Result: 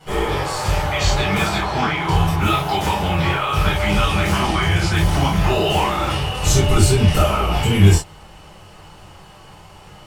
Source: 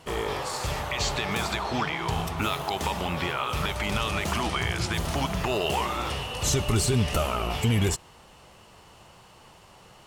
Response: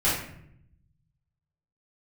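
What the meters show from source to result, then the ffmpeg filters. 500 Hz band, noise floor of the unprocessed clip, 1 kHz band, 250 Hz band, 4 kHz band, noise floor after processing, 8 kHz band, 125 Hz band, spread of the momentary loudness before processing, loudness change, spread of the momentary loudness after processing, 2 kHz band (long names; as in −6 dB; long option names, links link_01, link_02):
+8.5 dB, −53 dBFS, +9.0 dB, +9.5 dB, +7.0 dB, −43 dBFS, +5.5 dB, +11.5 dB, 6 LU, +9.5 dB, 6 LU, +8.0 dB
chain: -filter_complex "[1:a]atrim=start_sample=2205,atrim=end_sample=3528[link_01];[0:a][link_01]afir=irnorm=-1:irlink=0,volume=-4.5dB"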